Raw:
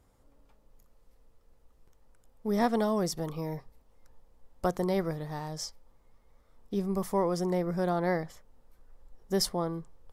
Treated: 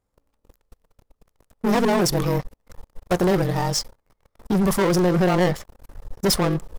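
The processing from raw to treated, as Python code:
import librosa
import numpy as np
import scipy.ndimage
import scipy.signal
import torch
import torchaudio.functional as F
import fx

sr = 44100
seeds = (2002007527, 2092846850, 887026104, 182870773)

y = fx.leveller(x, sr, passes=5)
y = fx.stretch_grains(y, sr, factor=0.67, grain_ms=44.0)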